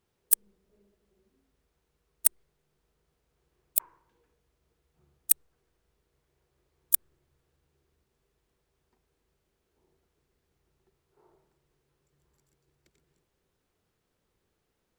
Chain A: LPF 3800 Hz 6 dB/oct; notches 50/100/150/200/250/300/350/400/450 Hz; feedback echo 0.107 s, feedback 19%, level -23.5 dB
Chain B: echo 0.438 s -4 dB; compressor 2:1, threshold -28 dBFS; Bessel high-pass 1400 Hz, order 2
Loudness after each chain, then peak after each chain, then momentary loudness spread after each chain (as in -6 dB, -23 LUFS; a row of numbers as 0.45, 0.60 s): -35.5, -33.5 LUFS; -12.5, -9.0 dBFS; 5, 5 LU